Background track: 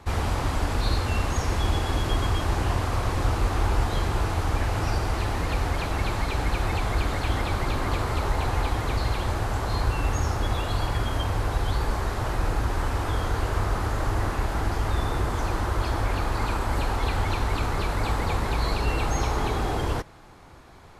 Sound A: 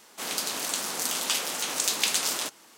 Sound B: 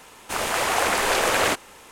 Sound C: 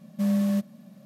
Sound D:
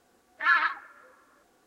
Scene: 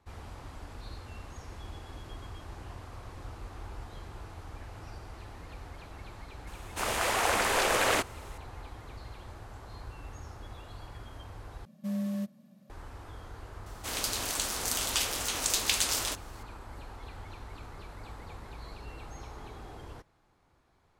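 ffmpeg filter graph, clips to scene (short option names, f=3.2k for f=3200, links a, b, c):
-filter_complex "[0:a]volume=-19.5dB,asplit=2[a][b];[a]atrim=end=11.654[c];[3:a]atrim=end=1.05,asetpts=PTS-STARTPTS,volume=-9dB[d];[b]atrim=start=12.696[e];[2:a]atrim=end=1.91,asetpts=PTS-STARTPTS,volume=-5.5dB,afade=t=in:d=0.004:c=hsin,afade=t=out:st=1.906:d=0.004:c=hsin,adelay=6470[f];[1:a]atrim=end=2.77,asetpts=PTS-STARTPTS,volume=-2.5dB,afade=t=in:d=0.004:c=hsin,afade=t=out:st=2.766:d=0.004:c=hsin,adelay=13660[g];[c][d]acrossfade=d=0.004:c1=hsin:c2=hsin[h];[h][e]acrossfade=d=0.004:c1=hsin:c2=hsin[i];[i][f][g]amix=inputs=3:normalize=0"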